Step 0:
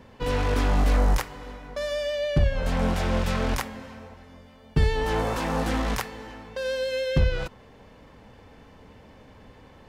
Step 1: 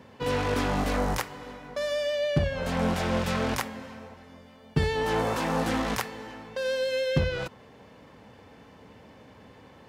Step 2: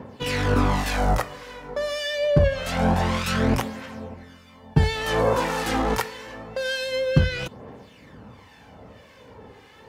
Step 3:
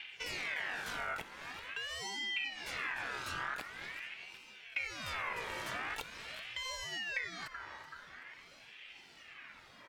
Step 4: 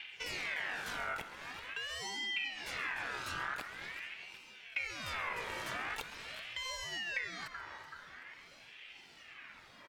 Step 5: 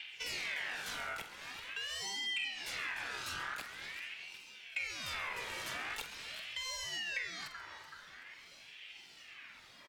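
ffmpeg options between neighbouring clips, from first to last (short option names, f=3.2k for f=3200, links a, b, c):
-af "highpass=99"
-filter_complex "[0:a]aphaser=in_gain=1:out_gain=1:delay=2.5:decay=0.45:speed=0.26:type=triangular,acrossover=split=1400[a][b];[a]aeval=exprs='val(0)*(1-0.7/2+0.7/2*cos(2*PI*1.7*n/s))':c=same[c];[b]aeval=exprs='val(0)*(1-0.7/2-0.7/2*cos(2*PI*1.7*n/s))':c=same[d];[c][d]amix=inputs=2:normalize=0,volume=7dB"
-af "aecho=1:1:379|758|1137:0.106|0.0477|0.0214,acompressor=threshold=-34dB:ratio=2.5,aeval=exprs='val(0)*sin(2*PI*2000*n/s+2000*0.3/0.45*sin(2*PI*0.45*n/s))':c=same,volume=-5dB"
-filter_complex "[0:a]asplit=2[a][b];[b]adelay=134.1,volume=-14dB,highshelf=f=4k:g=-3.02[c];[a][c]amix=inputs=2:normalize=0"
-filter_complex "[0:a]asplit=2[a][b];[b]adelay=47,volume=-11dB[c];[a][c]amix=inputs=2:normalize=0,acrossover=split=160|570|2600[d][e][f][g];[g]aeval=exprs='0.0316*sin(PI/2*1.58*val(0)/0.0316)':c=same[h];[d][e][f][h]amix=inputs=4:normalize=0,volume=-4dB"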